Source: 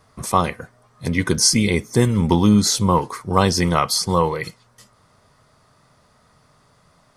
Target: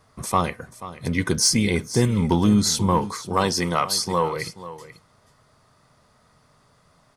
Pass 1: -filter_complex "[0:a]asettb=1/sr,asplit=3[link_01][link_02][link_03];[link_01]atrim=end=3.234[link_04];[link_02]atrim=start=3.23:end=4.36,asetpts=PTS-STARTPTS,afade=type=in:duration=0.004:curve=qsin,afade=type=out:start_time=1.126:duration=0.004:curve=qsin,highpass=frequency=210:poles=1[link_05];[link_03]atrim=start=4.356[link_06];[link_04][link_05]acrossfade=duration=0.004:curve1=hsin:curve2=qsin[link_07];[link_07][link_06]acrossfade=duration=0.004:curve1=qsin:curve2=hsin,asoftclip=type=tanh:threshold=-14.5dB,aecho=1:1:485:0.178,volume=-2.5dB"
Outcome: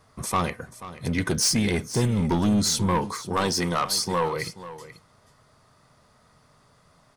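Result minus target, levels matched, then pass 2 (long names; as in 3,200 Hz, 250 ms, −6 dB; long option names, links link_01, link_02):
soft clipping: distortion +13 dB
-filter_complex "[0:a]asettb=1/sr,asplit=3[link_01][link_02][link_03];[link_01]atrim=end=3.234[link_04];[link_02]atrim=start=3.23:end=4.36,asetpts=PTS-STARTPTS,afade=type=in:duration=0.004:curve=qsin,afade=type=out:start_time=1.126:duration=0.004:curve=qsin,highpass=frequency=210:poles=1[link_05];[link_03]atrim=start=4.356[link_06];[link_04][link_05]acrossfade=duration=0.004:curve1=hsin:curve2=qsin[link_07];[link_07][link_06]acrossfade=duration=0.004:curve1=qsin:curve2=hsin,asoftclip=type=tanh:threshold=-4dB,aecho=1:1:485:0.178,volume=-2.5dB"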